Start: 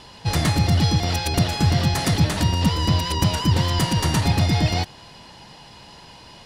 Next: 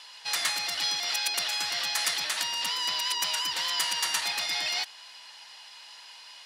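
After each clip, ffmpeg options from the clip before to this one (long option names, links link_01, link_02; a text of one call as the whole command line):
ffmpeg -i in.wav -af "highpass=1500" out.wav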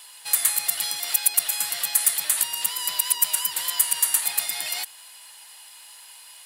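ffmpeg -i in.wav -filter_complex "[0:a]aexciter=amount=13.5:drive=2.9:freq=8000,asplit=2[link_01][link_02];[link_02]alimiter=limit=-5.5dB:level=0:latency=1:release=212,volume=2dB[link_03];[link_01][link_03]amix=inputs=2:normalize=0,volume=-8.5dB" out.wav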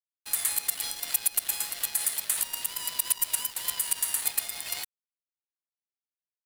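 ffmpeg -i in.wav -af "aeval=exprs='sgn(val(0))*max(abs(val(0))-0.0251,0)':channel_layout=same,alimiter=limit=-11.5dB:level=0:latency=1:release=60" out.wav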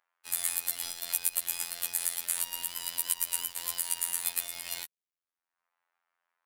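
ffmpeg -i in.wav -filter_complex "[0:a]acrossover=split=760|1800[link_01][link_02][link_03];[link_02]acompressor=mode=upward:threshold=-56dB:ratio=2.5[link_04];[link_01][link_04][link_03]amix=inputs=3:normalize=0,afftfilt=real='hypot(re,im)*cos(PI*b)':imag='0':win_size=2048:overlap=0.75" out.wav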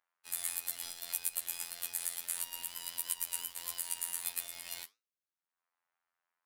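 ffmpeg -i in.wav -af "flanger=delay=8.7:depth=8.3:regen=-79:speed=1.6:shape=sinusoidal,volume=-1.5dB" out.wav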